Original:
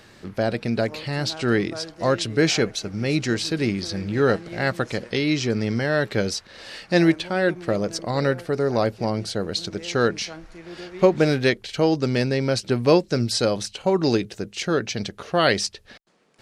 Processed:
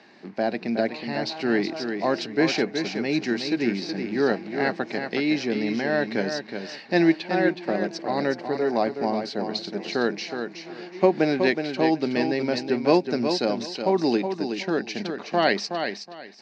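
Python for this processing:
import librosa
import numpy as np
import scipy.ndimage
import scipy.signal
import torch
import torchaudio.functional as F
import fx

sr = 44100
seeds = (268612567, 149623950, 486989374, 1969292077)

y = fx.block_float(x, sr, bits=7)
y = fx.cabinet(y, sr, low_hz=200.0, low_slope=24, high_hz=4700.0, hz=(500.0, 780.0, 1300.0, 3300.0), db=(-7, 4, -9, -9))
y = fx.echo_feedback(y, sr, ms=370, feedback_pct=22, wet_db=-7)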